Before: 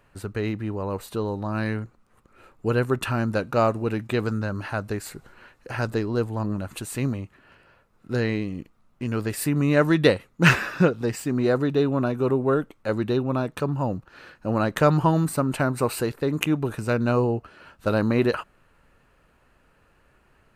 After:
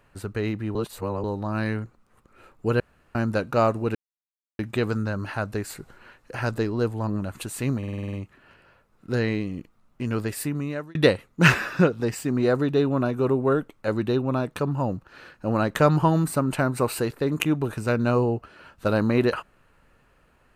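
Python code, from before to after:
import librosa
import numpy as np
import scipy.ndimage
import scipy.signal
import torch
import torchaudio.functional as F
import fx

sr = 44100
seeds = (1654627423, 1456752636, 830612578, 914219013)

y = fx.edit(x, sr, fx.reverse_span(start_s=0.75, length_s=0.49),
    fx.room_tone_fill(start_s=2.8, length_s=0.35),
    fx.insert_silence(at_s=3.95, length_s=0.64),
    fx.stutter(start_s=7.14, slice_s=0.05, count=8),
    fx.fade_out_span(start_s=9.2, length_s=0.76), tone=tone)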